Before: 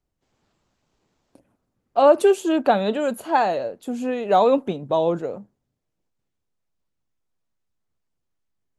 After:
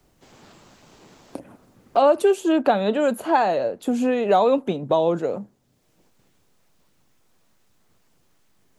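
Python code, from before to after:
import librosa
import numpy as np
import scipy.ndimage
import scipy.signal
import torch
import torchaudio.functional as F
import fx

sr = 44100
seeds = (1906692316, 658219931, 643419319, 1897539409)

y = fx.band_squash(x, sr, depth_pct=70)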